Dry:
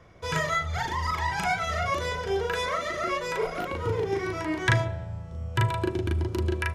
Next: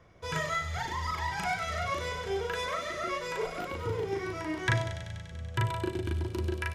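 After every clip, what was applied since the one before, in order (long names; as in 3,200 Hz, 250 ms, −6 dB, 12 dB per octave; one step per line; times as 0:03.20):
delay with a high-pass on its return 96 ms, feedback 78%, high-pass 2,700 Hz, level −7.5 dB
level −5 dB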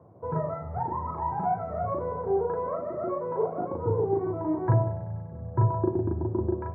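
elliptic band-pass filter 100–920 Hz, stop band 50 dB
level +7.5 dB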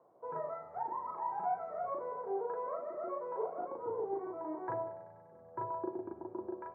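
high-pass filter 480 Hz 12 dB per octave
level −6.5 dB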